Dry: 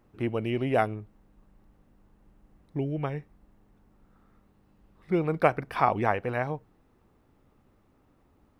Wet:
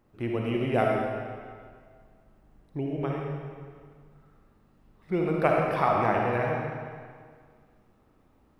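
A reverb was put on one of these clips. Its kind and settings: digital reverb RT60 1.9 s, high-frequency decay 0.9×, pre-delay 15 ms, DRR -1.5 dB; gain -2.5 dB

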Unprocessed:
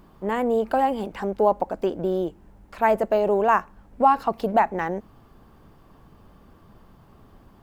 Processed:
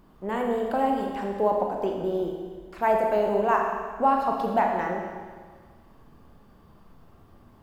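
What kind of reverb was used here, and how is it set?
Schroeder reverb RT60 1.6 s, combs from 26 ms, DRR 1 dB; gain -5 dB

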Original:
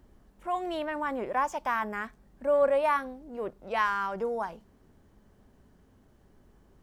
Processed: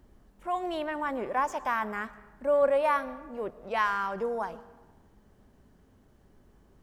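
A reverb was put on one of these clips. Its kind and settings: digital reverb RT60 1.3 s, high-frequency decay 0.6×, pre-delay 70 ms, DRR 17 dB

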